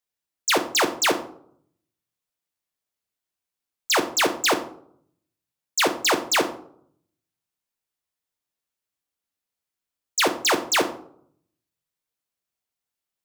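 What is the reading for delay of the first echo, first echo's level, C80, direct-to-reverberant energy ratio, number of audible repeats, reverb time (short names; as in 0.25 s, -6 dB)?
none, none, 15.5 dB, 6.5 dB, none, 0.65 s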